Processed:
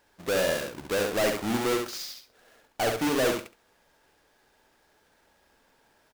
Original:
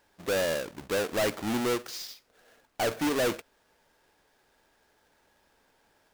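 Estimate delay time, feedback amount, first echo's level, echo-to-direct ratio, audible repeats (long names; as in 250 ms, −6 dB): 69 ms, 17%, −4.5 dB, −4.5 dB, 2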